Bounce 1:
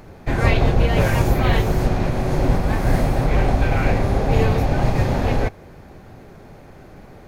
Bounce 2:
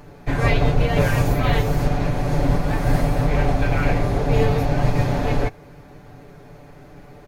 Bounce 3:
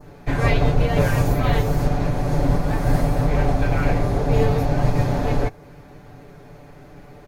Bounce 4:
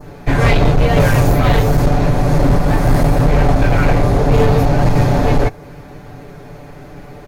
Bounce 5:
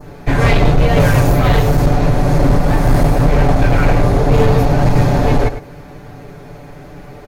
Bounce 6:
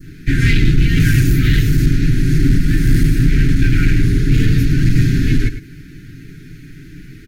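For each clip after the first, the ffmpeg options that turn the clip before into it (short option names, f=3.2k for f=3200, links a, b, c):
-af "aecho=1:1:6.9:0.65,volume=-2.5dB"
-af "adynamicequalizer=threshold=0.00708:dfrequency=2600:dqfactor=1:tfrequency=2600:tqfactor=1:attack=5:release=100:ratio=0.375:range=2:mode=cutabove:tftype=bell"
-af "volume=15dB,asoftclip=hard,volume=-15dB,volume=8.5dB"
-af "aecho=1:1:104:0.266"
-af "asuperstop=centerf=740:order=12:qfactor=0.64"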